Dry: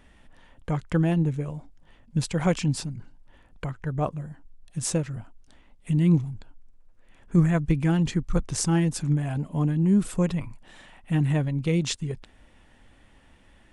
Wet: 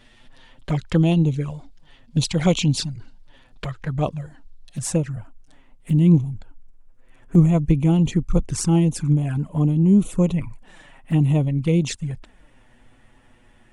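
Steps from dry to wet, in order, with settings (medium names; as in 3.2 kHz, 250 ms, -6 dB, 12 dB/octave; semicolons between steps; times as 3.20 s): touch-sensitive flanger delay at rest 9.1 ms, full sweep at -21 dBFS; peaking EQ 4.1 kHz +10 dB 1.2 oct, from 4.79 s -4 dB; trim +5.5 dB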